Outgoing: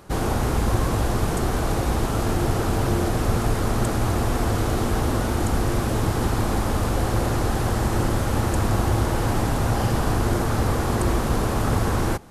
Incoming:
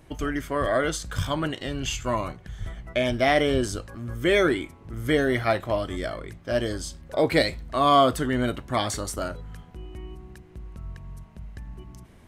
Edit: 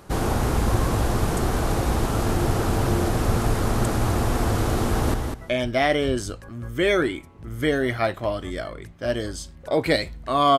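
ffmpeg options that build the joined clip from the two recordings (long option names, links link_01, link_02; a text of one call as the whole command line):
ffmpeg -i cue0.wav -i cue1.wav -filter_complex "[0:a]apad=whole_dur=10.58,atrim=end=10.58,atrim=end=5.142[link_01];[1:a]atrim=start=2.598:end=8.04[link_02];[link_01][link_02]acrossfade=duration=0.004:curve1=hsin:curve2=hsin,asplit=2[link_03][link_04];[link_04]afade=type=in:start_time=4.87:duration=0.01,afade=type=out:start_time=5.14:duration=0.01,aecho=0:1:200|400|600:0.473151|0.0709727|0.0106459[link_05];[link_03][link_05]amix=inputs=2:normalize=0" out.wav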